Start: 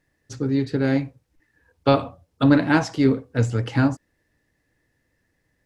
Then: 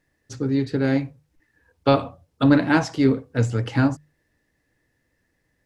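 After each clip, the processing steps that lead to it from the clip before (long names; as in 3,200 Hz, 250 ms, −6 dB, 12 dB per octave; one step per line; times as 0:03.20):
mains-hum notches 50/100/150 Hz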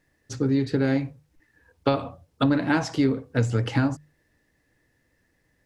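downward compressor 6 to 1, threshold −20 dBFS, peak gain reduction 9.5 dB
level +2 dB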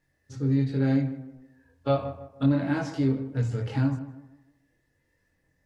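harmonic and percussive parts rebalanced percussive −11 dB
multi-voice chorus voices 4, 0.71 Hz, delay 22 ms, depth 1.1 ms
tape delay 156 ms, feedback 42%, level −11 dB, low-pass 1,600 Hz
level +1 dB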